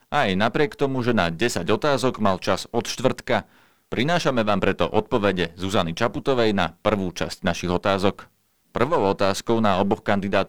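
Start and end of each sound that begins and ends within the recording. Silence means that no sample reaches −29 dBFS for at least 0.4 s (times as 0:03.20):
0:03.92–0:08.20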